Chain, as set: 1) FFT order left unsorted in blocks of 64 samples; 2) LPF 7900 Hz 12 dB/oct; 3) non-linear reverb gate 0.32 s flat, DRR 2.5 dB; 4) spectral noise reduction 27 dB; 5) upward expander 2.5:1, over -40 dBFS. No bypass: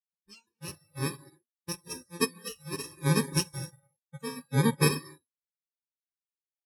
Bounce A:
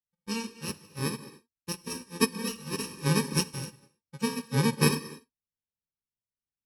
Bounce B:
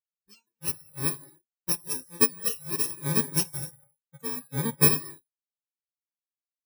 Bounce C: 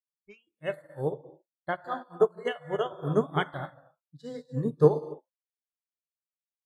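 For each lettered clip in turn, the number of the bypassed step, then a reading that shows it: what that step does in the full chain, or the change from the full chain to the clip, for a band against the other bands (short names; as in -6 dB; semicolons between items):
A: 4, 125 Hz band -2.0 dB; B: 2, 8 kHz band +8.5 dB; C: 1, 500 Hz band +11.0 dB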